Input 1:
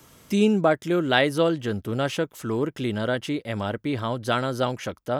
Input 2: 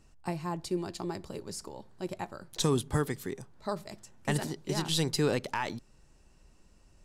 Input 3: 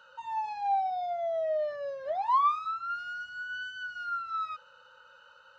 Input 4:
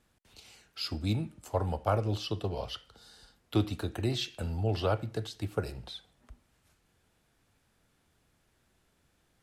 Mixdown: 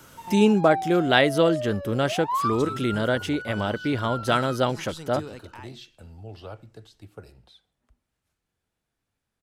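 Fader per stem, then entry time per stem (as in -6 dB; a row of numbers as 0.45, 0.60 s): +1.5, -11.5, -1.0, -11.0 dB; 0.00, 0.00, 0.00, 1.60 s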